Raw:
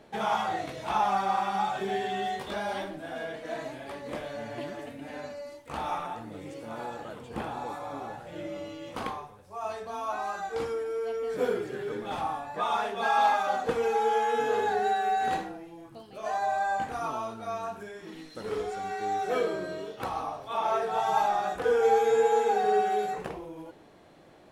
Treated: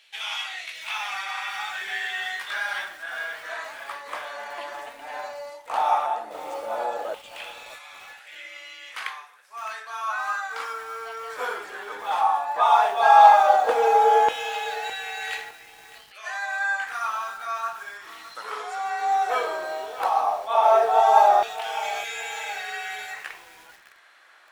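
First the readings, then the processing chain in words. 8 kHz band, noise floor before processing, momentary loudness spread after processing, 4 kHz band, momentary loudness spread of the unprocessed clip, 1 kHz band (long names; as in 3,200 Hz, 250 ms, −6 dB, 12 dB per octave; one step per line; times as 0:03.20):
can't be measured, −51 dBFS, 20 LU, +8.0 dB, 16 LU, +7.0 dB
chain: auto-filter high-pass saw down 0.14 Hz 560–2,800 Hz
feedback echo at a low word length 611 ms, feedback 35%, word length 7 bits, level −14.5 dB
level +5 dB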